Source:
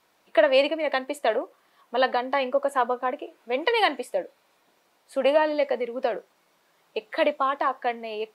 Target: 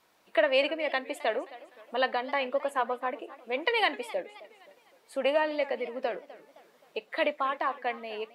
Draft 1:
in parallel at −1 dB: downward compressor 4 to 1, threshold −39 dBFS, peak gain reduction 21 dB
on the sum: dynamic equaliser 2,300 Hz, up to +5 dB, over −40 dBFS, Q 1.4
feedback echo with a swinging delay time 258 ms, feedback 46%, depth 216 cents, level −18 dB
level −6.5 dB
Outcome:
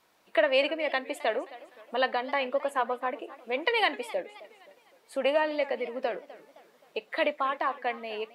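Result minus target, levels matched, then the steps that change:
downward compressor: peak gain reduction −8 dB
change: downward compressor 4 to 1, threshold −50 dBFS, peak gain reduction 29.5 dB

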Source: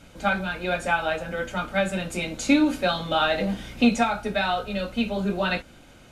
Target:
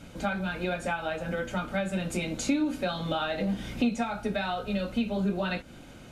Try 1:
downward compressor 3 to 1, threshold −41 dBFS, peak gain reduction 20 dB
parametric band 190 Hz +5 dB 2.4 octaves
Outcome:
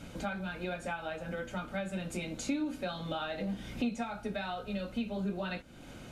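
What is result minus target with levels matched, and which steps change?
downward compressor: peak gain reduction +6.5 dB
change: downward compressor 3 to 1, threshold −31 dBFS, peak gain reduction 13 dB

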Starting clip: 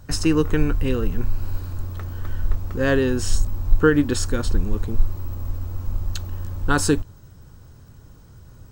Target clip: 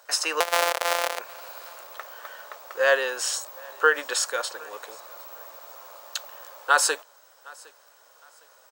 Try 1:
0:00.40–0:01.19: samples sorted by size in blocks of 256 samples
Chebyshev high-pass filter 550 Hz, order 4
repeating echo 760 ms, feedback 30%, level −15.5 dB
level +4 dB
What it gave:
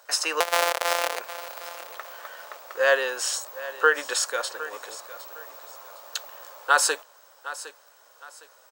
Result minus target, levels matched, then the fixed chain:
echo-to-direct +9.5 dB
0:00.40–0:01.19: samples sorted by size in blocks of 256 samples
Chebyshev high-pass filter 550 Hz, order 4
repeating echo 760 ms, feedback 30%, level −25 dB
level +4 dB

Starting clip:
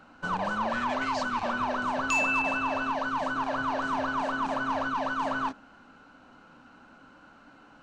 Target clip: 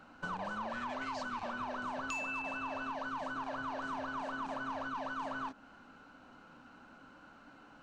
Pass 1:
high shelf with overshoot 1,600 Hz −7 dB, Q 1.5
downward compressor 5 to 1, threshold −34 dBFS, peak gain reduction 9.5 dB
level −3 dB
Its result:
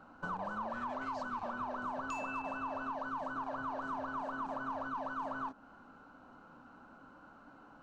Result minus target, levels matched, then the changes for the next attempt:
4,000 Hz band −8.0 dB
remove: high shelf with overshoot 1,600 Hz −7 dB, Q 1.5

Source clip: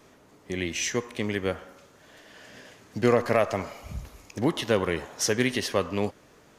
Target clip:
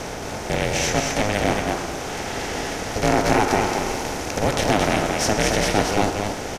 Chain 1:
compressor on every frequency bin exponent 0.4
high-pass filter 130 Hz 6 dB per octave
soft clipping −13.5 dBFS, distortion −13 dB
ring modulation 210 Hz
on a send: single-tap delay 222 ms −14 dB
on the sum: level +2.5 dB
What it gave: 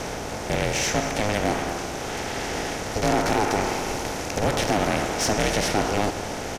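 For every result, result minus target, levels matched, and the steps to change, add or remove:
soft clipping: distortion +17 dB; echo-to-direct −10 dB
change: soft clipping −2 dBFS, distortion −30 dB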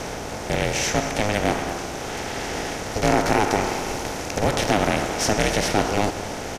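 echo-to-direct −10 dB
change: single-tap delay 222 ms −4 dB

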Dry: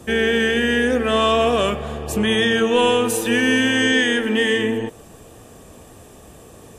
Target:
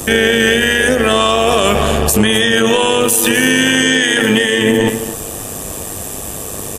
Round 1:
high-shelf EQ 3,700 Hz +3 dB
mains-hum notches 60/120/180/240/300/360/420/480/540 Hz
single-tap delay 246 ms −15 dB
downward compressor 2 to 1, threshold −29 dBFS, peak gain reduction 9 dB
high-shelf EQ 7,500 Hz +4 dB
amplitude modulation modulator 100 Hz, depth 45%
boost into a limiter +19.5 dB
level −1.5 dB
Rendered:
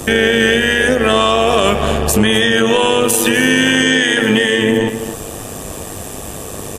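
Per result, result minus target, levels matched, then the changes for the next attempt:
downward compressor: peak gain reduction +5 dB; 8,000 Hz band −3.0 dB
change: downward compressor 2 to 1, threshold −19 dBFS, peak gain reduction 4 dB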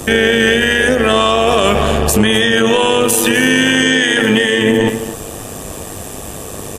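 8,000 Hz band −3.0 dB
change: second high-shelf EQ 7,500 Hz +13 dB

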